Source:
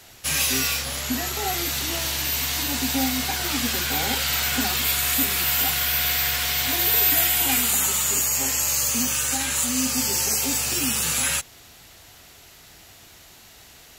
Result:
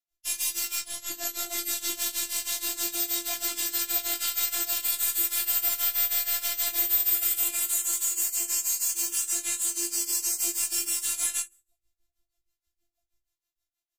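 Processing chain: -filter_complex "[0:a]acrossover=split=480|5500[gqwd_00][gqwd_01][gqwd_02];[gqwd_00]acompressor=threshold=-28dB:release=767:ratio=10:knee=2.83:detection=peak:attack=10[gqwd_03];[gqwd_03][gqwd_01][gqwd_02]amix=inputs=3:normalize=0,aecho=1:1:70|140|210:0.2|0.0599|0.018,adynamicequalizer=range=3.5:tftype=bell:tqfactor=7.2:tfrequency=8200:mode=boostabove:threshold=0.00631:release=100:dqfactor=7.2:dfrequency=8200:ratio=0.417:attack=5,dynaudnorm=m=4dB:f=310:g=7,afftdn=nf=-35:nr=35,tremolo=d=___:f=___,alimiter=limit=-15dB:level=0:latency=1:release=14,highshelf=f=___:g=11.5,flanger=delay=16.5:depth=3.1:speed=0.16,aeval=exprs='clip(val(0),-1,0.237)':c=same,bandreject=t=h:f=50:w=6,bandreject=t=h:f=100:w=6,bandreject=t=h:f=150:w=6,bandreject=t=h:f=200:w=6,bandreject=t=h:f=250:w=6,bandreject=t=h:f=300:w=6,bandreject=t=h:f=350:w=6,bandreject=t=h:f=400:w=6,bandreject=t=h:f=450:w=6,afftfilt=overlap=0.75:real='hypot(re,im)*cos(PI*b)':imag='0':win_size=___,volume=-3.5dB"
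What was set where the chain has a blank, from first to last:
0.92, 6.3, 4700, 512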